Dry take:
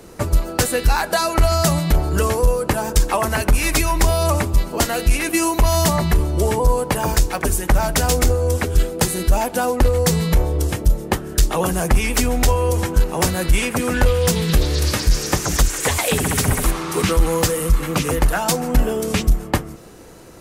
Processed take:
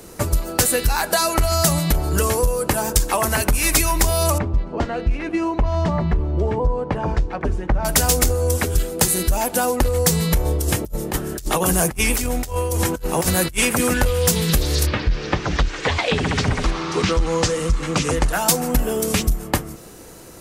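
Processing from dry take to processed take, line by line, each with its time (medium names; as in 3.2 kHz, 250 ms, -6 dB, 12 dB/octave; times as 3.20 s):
4.38–7.85 s: tape spacing loss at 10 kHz 41 dB
10.45–13.94 s: compressor with a negative ratio -20 dBFS, ratio -0.5
14.85–18.32 s: low-pass 3.1 kHz -> 8.2 kHz 24 dB/octave
whole clip: compression, threshold -14 dBFS; treble shelf 5.8 kHz +8.5 dB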